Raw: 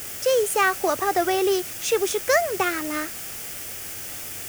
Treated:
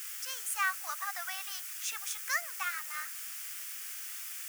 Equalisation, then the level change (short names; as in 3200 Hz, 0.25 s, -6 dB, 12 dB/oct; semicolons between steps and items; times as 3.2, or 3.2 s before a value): inverse Chebyshev high-pass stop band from 340 Hz, stop band 60 dB; dynamic EQ 3400 Hz, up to -4 dB, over -40 dBFS, Q 0.89; -7.0 dB